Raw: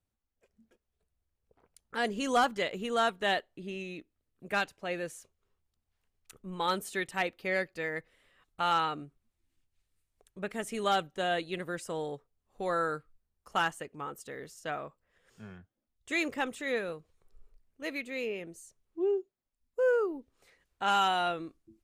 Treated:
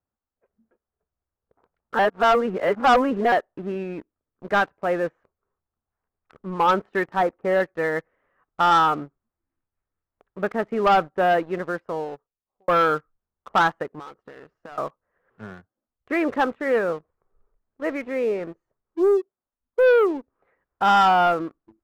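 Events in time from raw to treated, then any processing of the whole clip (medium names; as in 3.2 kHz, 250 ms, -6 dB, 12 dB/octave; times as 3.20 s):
1.99–3.32 s: reverse
7.06–7.60 s: low-pass 1.6 kHz
11.27–12.68 s: fade out
13.99–14.78 s: compression 20:1, threshold -47 dBFS
whole clip: low-pass 1.4 kHz 24 dB/octave; tilt EQ +2.5 dB/octave; waveshaping leveller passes 2; trim +8 dB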